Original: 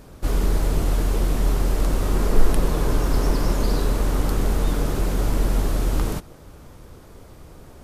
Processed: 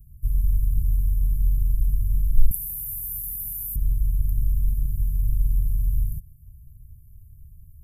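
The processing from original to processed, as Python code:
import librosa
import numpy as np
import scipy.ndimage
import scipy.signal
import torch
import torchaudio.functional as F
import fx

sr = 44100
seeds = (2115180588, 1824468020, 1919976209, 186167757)

y = scipy.signal.sosfilt(scipy.signal.cheby2(4, 60, [390.0, 4800.0], 'bandstop', fs=sr, output='sos'), x)
y = fx.tilt_eq(y, sr, slope=4.5, at=(2.51, 3.76))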